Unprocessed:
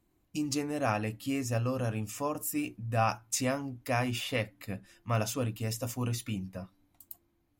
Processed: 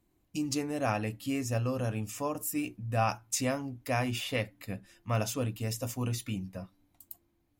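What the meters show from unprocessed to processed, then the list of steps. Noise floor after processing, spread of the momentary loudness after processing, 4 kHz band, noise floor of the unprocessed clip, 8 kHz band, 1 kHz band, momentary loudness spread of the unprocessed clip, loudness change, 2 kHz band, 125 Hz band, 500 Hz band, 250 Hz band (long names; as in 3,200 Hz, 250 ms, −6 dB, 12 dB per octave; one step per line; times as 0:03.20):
−74 dBFS, 12 LU, 0.0 dB, −74 dBFS, 0.0 dB, −1.0 dB, 12 LU, 0.0 dB, −0.5 dB, 0.0 dB, 0.0 dB, 0.0 dB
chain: parametric band 1,300 Hz −2 dB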